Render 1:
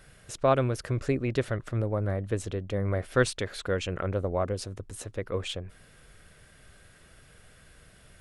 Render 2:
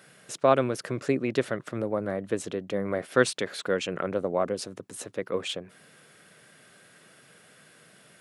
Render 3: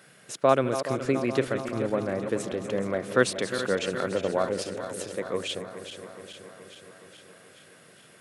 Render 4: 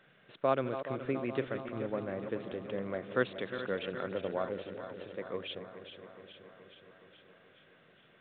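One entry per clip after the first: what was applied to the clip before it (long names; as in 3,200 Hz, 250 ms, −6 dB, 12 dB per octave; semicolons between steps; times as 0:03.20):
high-pass filter 160 Hz 24 dB per octave; level +2.5 dB
feedback delay that plays each chunk backwards 211 ms, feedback 80%, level −10.5 dB
level −8.5 dB; mu-law 64 kbit/s 8,000 Hz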